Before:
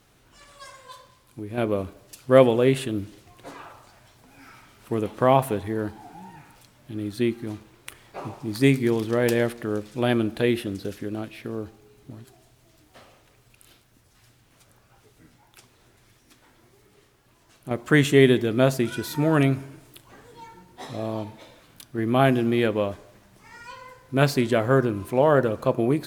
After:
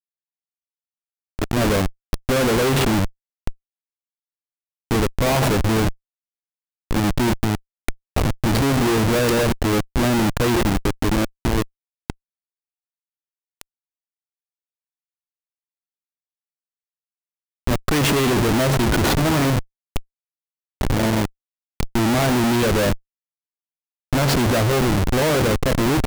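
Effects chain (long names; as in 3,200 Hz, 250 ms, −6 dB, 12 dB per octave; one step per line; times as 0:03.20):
high-shelf EQ 11,000 Hz +2.5 dB
comparator with hysteresis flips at −30 dBFS
level +8 dB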